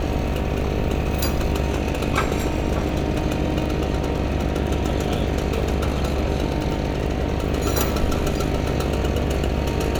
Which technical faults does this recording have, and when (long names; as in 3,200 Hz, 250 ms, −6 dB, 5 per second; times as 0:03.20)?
mains buzz 50 Hz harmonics 15 −27 dBFS
surface crackle 20 per second −27 dBFS